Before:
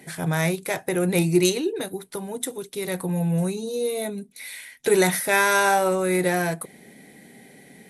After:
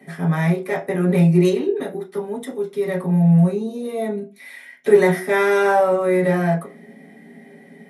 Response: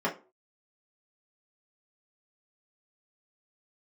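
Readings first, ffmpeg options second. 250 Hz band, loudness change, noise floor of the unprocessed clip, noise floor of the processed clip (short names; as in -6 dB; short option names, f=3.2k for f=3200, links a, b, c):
+6.0 dB, +4.5 dB, -51 dBFS, -46 dBFS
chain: -filter_complex "[1:a]atrim=start_sample=2205[a];[0:a][a]afir=irnorm=-1:irlink=0,volume=-8.5dB"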